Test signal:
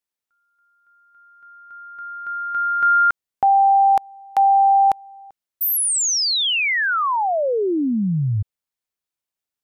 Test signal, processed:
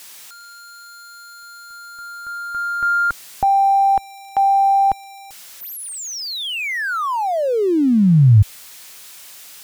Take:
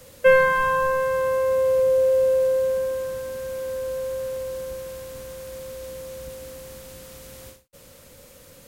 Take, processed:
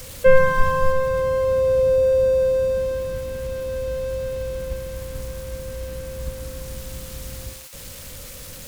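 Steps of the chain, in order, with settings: switching spikes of -19 dBFS; RIAA curve playback; gain -1 dB

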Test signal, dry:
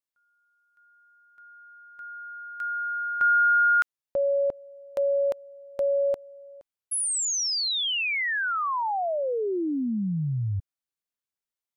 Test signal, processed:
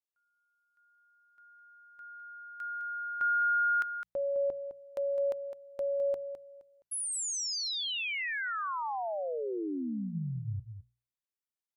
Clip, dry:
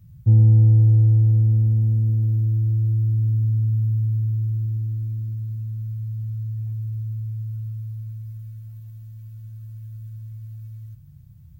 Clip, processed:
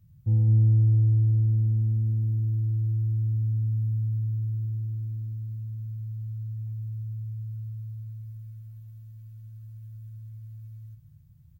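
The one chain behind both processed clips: notches 60/120/180 Hz; echo 0.209 s -9.5 dB; gain -8 dB

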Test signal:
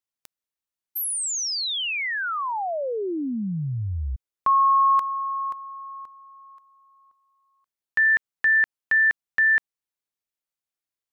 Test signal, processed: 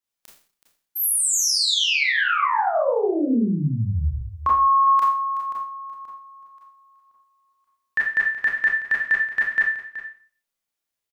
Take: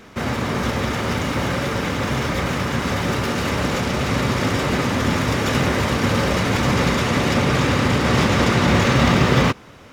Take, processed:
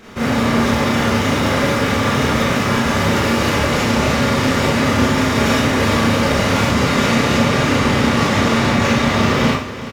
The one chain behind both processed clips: limiter -12.5 dBFS; on a send: echo 0.375 s -13.5 dB; on the sum: Schroeder reverb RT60 0.44 s, combs from 27 ms, DRR -5 dB

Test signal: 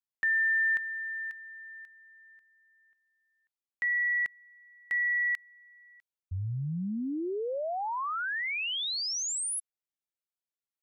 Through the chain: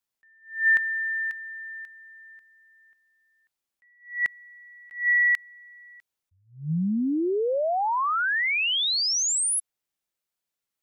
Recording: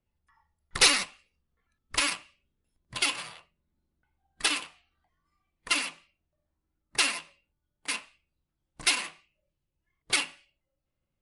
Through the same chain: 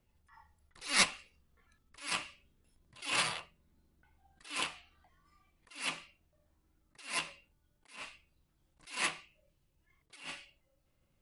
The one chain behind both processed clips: attack slew limiter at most 150 dB/s; gain +8 dB

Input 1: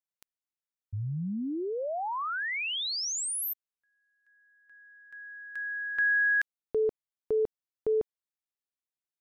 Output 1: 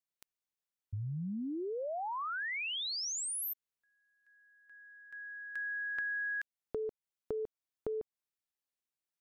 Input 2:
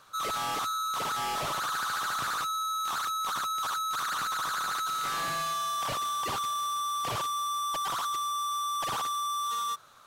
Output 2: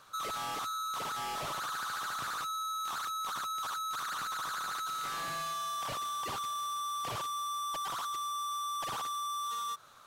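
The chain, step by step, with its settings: compressor, threshold -35 dBFS; gain -1 dB

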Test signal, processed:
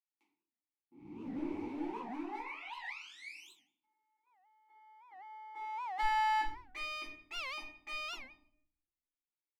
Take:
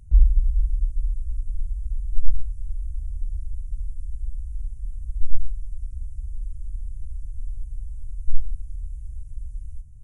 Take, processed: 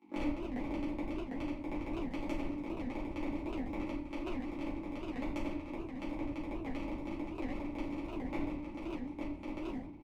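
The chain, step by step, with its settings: cycle switcher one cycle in 3, inverted; gate -31 dBFS, range -10 dB; HPF 51 Hz 24 dB/oct; bell 72 Hz -13.5 dB 0.94 oct; compressor 6:1, threshold -34 dBFS; vowel filter u; one-sided clip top -56.5 dBFS; bands offset in time highs, lows 40 ms, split 180 Hz; shoebox room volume 95 m³, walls mixed, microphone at 2.2 m; record warp 78 rpm, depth 250 cents; gain +7.5 dB

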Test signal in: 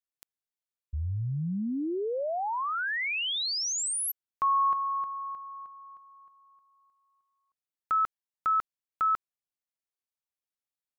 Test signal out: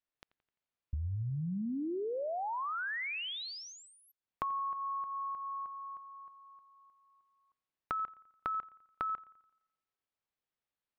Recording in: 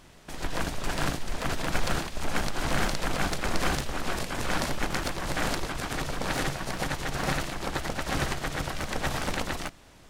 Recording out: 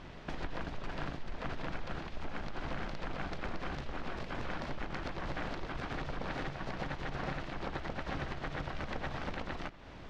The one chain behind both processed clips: compressor 5:1, threshold -41 dBFS; air absorption 220 m; on a send: analogue delay 86 ms, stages 2048, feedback 50%, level -21 dB; on the sum: gain +5.5 dB

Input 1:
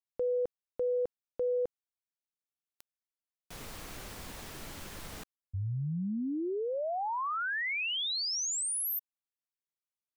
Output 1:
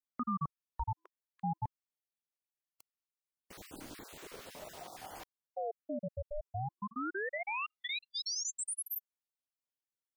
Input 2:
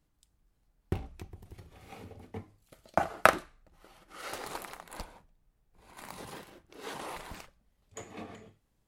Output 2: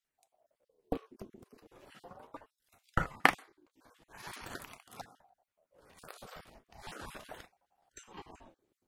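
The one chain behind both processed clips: random spectral dropouts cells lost 43%; ring modulator with a swept carrier 530 Hz, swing 45%, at 0.39 Hz

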